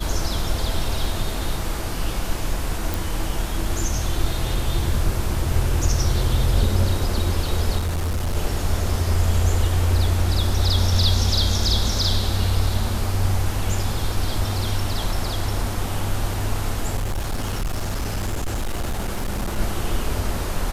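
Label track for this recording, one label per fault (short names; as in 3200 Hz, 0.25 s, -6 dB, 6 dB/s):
2.940000	2.940000	pop
7.770000	8.370000	clipped -19.5 dBFS
16.960000	19.590000	clipped -20.5 dBFS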